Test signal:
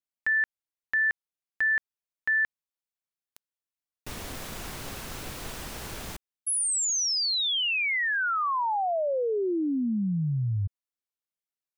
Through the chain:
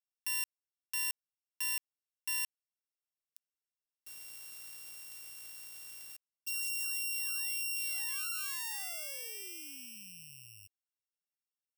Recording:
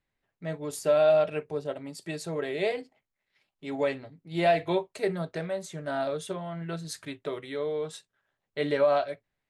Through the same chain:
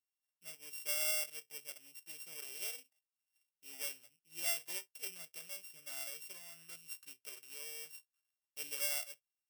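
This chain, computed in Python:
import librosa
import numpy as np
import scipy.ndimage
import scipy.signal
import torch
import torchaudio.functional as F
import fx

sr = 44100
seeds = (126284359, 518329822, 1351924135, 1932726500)

y = np.r_[np.sort(x[:len(x) // 16 * 16].reshape(-1, 16), axis=1).ravel(), x[len(x) // 16 * 16:]]
y = F.preemphasis(torch.from_numpy(y), 0.97).numpy()
y = y * librosa.db_to_amplitude(-6.5)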